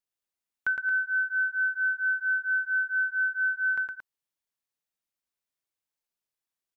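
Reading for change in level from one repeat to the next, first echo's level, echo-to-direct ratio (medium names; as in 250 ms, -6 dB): -4.5 dB, -3.5 dB, -2.0 dB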